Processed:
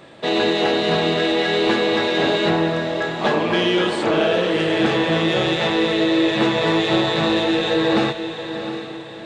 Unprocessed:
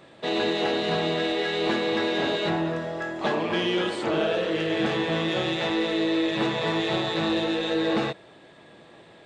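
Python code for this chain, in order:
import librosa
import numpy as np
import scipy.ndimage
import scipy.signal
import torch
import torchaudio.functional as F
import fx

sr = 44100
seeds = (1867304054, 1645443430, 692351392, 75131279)

y = fx.echo_diffused(x, sr, ms=704, feedback_pct=41, wet_db=-9.5)
y = F.gain(torch.from_numpy(y), 6.5).numpy()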